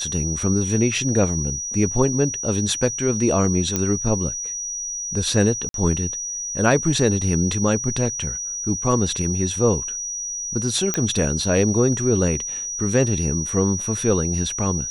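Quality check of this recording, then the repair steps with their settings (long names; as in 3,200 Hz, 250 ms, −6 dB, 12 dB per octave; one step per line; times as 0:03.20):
whistle 5,800 Hz −26 dBFS
0:03.76: click −7 dBFS
0:05.69–0:05.74: drop-out 52 ms
0:10.94: click −6 dBFS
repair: click removal
notch filter 5,800 Hz, Q 30
repair the gap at 0:05.69, 52 ms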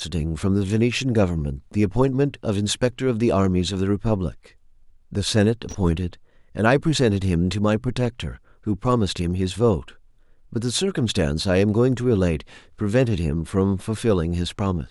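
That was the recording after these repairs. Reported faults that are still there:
none of them is left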